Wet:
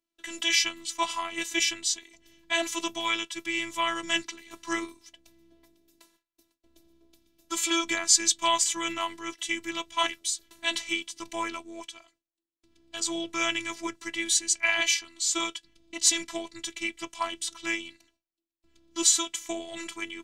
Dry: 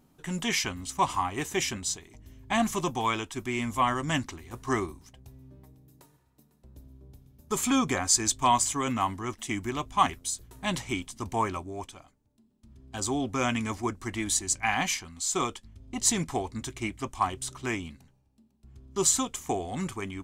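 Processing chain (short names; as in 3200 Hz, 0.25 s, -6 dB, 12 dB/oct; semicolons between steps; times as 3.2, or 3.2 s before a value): gate with hold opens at -52 dBFS; weighting filter D; robotiser 334 Hz; gain -2 dB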